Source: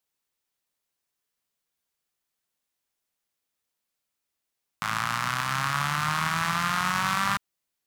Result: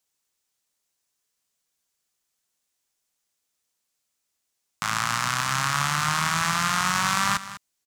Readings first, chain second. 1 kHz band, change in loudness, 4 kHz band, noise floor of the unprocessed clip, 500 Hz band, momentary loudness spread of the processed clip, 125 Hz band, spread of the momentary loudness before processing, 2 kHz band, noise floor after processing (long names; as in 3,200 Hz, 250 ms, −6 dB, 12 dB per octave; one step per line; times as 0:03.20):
+2.0 dB, +3.0 dB, +4.5 dB, −84 dBFS, +2.0 dB, 6 LU, +1.5 dB, 4 LU, +2.0 dB, −79 dBFS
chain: parametric band 6,900 Hz +7.5 dB 1.2 octaves
single-tap delay 201 ms −14.5 dB
level +1.5 dB